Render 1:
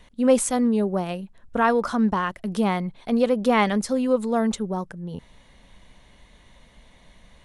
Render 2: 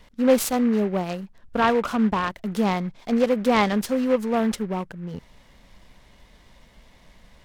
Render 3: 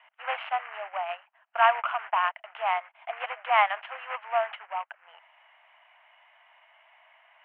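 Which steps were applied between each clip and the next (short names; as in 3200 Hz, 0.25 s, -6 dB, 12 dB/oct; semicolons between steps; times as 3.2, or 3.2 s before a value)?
noise-modulated delay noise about 1400 Hz, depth 0.037 ms
Chebyshev band-pass 650–3000 Hz, order 5; gain +1.5 dB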